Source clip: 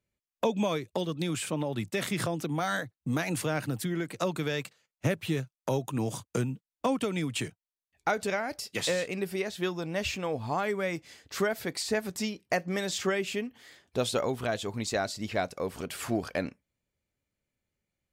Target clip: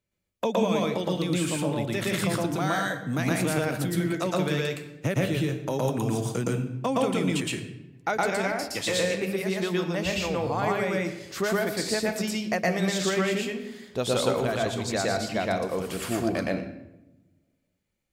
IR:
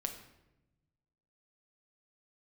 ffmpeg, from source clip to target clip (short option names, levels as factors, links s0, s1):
-filter_complex "[0:a]asplit=2[s0][s1];[1:a]atrim=start_sample=2205,adelay=116[s2];[s1][s2]afir=irnorm=-1:irlink=0,volume=1.26[s3];[s0][s3]amix=inputs=2:normalize=0"